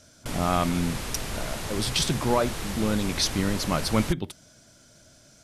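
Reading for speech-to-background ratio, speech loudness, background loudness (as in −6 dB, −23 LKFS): 6.5 dB, −27.0 LKFS, −33.5 LKFS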